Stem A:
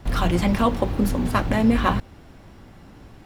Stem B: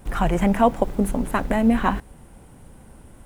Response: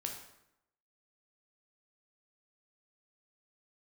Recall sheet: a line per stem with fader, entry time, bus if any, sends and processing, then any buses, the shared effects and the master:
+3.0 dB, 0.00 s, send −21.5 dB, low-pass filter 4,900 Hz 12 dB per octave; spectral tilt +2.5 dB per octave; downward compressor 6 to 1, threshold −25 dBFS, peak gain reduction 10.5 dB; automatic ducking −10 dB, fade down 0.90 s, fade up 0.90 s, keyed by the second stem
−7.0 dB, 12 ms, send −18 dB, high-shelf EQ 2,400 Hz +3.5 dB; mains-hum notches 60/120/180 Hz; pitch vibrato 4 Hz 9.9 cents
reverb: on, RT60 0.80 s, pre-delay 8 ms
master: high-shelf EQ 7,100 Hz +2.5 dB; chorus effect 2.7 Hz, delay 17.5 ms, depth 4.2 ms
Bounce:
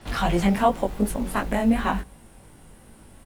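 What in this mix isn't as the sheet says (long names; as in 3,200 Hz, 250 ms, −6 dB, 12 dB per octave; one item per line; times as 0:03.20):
stem B −7.0 dB → −0.5 dB
reverb return −9.5 dB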